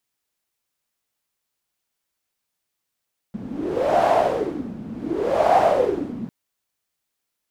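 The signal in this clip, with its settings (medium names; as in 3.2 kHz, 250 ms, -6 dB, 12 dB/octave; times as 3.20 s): wind-like swept noise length 2.95 s, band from 210 Hz, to 720 Hz, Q 6.2, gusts 2, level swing 15 dB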